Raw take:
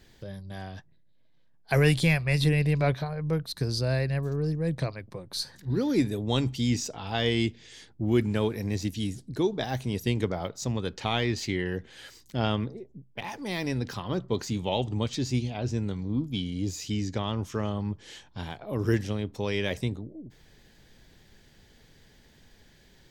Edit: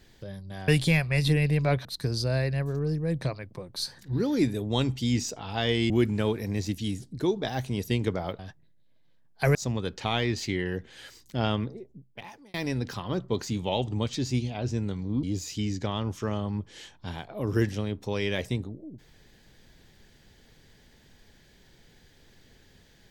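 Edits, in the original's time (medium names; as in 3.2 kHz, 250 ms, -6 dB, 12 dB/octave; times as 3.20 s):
0.68–1.84 s: move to 10.55 s
3.01–3.42 s: delete
7.47–8.06 s: delete
12.54–13.54 s: fade out equal-power
16.23–16.55 s: delete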